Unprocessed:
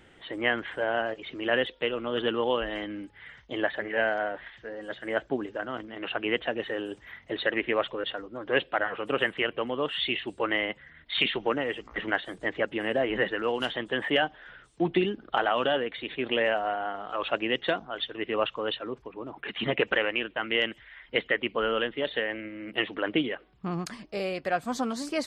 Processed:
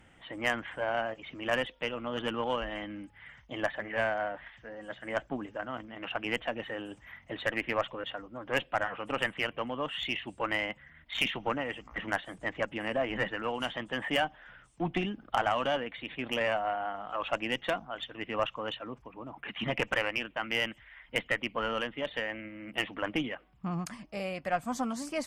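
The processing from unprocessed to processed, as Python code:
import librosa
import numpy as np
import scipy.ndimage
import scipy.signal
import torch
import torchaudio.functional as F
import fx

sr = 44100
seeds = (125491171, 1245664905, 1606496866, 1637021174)

y = fx.cheby_harmonics(x, sr, harmonics=(6, 8), levels_db=(-19, -24), full_scale_db=-10.0)
y = fx.graphic_eq_15(y, sr, hz=(400, 1600, 4000), db=(-12, -4, -10))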